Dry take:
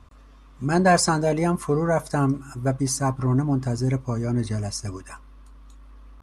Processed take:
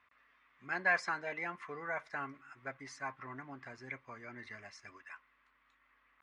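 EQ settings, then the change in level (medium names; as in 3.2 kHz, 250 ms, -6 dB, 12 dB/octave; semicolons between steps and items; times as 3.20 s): band-pass filter 2 kHz, Q 3.7; distance through air 98 m; +1.5 dB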